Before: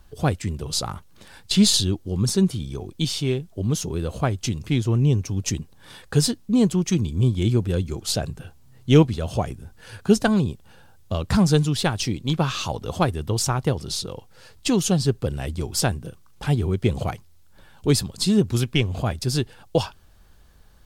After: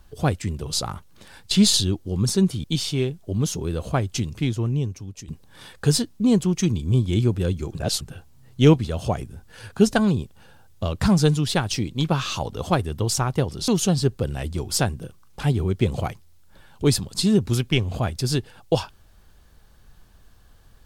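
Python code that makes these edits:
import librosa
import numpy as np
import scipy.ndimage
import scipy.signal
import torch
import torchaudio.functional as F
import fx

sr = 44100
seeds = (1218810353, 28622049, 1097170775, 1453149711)

y = fx.edit(x, sr, fx.cut(start_s=2.64, length_s=0.29),
    fx.fade_out_to(start_s=4.53, length_s=1.04, floor_db=-18.0),
    fx.reverse_span(start_s=8.04, length_s=0.26),
    fx.cut(start_s=13.97, length_s=0.74), tone=tone)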